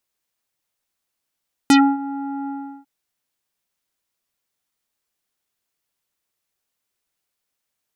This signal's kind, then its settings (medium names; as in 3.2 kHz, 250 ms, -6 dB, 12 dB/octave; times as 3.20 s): synth note square C#4 24 dB/octave, low-pass 1.1 kHz, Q 2, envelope 3.5 oct, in 0.11 s, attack 1.8 ms, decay 0.27 s, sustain -18 dB, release 0.37 s, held 0.78 s